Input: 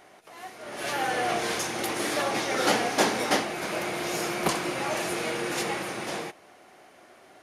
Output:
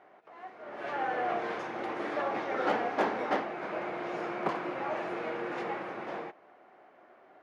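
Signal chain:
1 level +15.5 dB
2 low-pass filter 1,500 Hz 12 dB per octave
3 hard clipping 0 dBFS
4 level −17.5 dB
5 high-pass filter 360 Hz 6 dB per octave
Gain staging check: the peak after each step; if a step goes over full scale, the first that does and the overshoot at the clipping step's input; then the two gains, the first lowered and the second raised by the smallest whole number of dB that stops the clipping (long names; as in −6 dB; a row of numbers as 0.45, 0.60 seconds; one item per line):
+6.0, +5.0, 0.0, −17.5, −16.0 dBFS
step 1, 5.0 dB
step 1 +10.5 dB, step 4 −12.5 dB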